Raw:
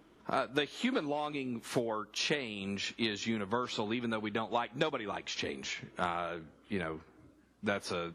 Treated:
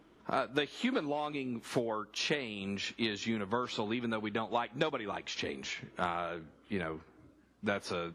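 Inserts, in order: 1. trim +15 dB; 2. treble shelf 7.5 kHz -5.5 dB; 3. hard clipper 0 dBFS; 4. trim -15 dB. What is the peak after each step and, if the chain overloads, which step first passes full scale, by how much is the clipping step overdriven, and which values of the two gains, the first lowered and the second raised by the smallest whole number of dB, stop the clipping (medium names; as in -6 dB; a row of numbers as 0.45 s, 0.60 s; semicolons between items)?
-1.5 dBFS, -2.0 dBFS, -2.0 dBFS, -17.0 dBFS; nothing clips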